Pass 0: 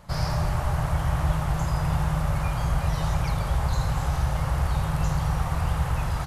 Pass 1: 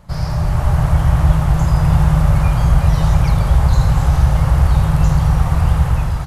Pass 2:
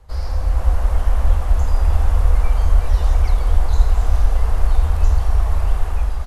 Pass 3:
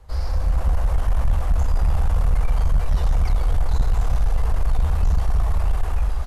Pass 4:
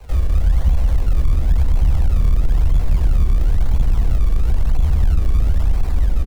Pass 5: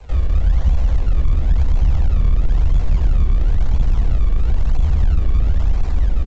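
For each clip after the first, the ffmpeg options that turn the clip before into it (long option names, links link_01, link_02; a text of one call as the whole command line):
ffmpeg -i in.wav -af "lowshelf=frequency=320:gain=7,dynaudnorm=framelen=220:gausssize=5:maxgain=11.5dB" out.wav
ffmpeg -i in.wav -af "lowshelf=frequency=69:gain=11,afreqshift=-82,volume=-6.5dB" out.wav
ffmpeg -i in.wav -af "asoftclip=type=tanh:threshold=-12dB" out.wav
ffmpeg -i in.wav -filter_complex "[0:a]acrusher=samples=26:mix=1:aa=0.000001:lfo=1:lforange=26:lforate=0.99,acrossover=split=250|540[link_01][link_02][link_03];[link_01]acompressor=threshold=-20dB:ratio=4[link_04];[link_02]acompressor=threshold=-53dB:ratio=4[link_05];[link_03]acompressor=threshold=-49dB:ratio=4[link_06];[link_04][link_05][link_06]amix=inputs=3:normalize=0,asplit=6[link_07][link_08][link_09][link_10][link_11][link_12];[link_08]adelay=137,afreqshift=-78,volume=-22.5dB[link_13];[link_09]adelay=274,afreqshift=-156,volume=-26.4dB[link_14];[link_10]adelay=411,afreqshift=-234,volume=-30.3dB[link_15];[link_11]adelay=548,afreqshift=-312,volume=-34.1dB[link_16];[link_12]adelay=685,afreqshift=-390,volume=-38dB[link_17];[link_07][link_13][link_14][link_15][link_16][link_17]amix=inputs=6:normalize=0,volume=8.5dB" out.wav
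ffmpeg -i in.wav -ar 16000 -c:a g722 out.g722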